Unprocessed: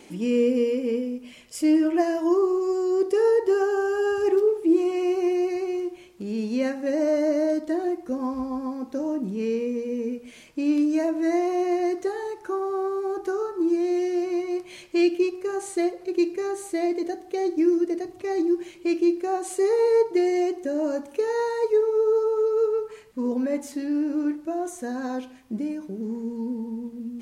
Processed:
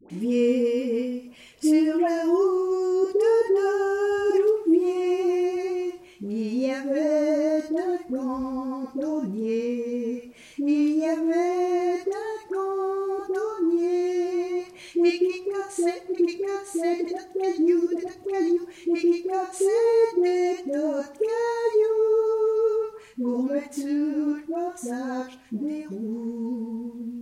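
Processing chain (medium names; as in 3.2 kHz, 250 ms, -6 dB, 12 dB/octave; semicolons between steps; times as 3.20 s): phase dispersion highs, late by 100 ms, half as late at 760 Hz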